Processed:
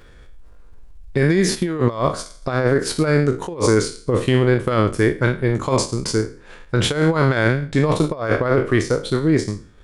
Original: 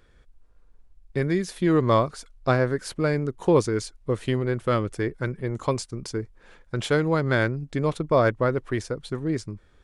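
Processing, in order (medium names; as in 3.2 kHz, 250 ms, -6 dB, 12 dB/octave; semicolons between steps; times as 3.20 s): spectral sustain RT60 0.48 s; compressor with a negative ratio -23 dBFS, ratio -0.5; transient shaper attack -2 dB, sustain +4 dB, from 1.54 s sustain -6 dB; trim +8 dB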